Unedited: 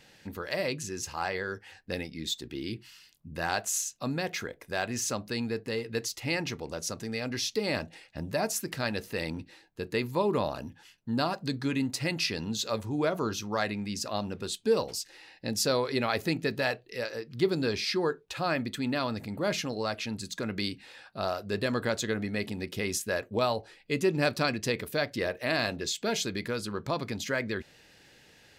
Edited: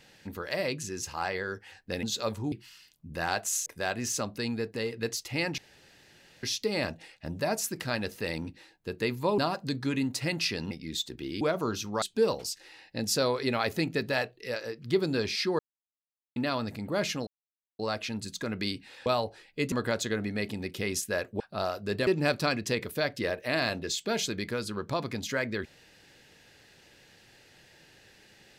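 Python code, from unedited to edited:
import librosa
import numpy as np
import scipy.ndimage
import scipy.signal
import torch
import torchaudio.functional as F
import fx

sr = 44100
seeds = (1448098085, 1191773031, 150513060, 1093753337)

y = fx.edit(x, sr, fx.swap(start_s=2.03, length_s=0.7, other_s=12.5, other_length_s=0.49),
    fx.cut(start_s=3.87, length_s=0.71),
    fx.room_tone_fill(start_s=6.5, length_s=0.85),
    fx.cut(start_s=10.3, length_s=0.87),
    fx.cut(start_s=13.6, length_s=0.91),
    fx.silence(start_s=18.08, length_s=0.77),
    fx.insert_silence(at_s=19.76, length_s=0.52),
    fx.swap(start_s=21.03, length_s=0.67, other_s=23.38, other_length_s=0.66), tone=tone)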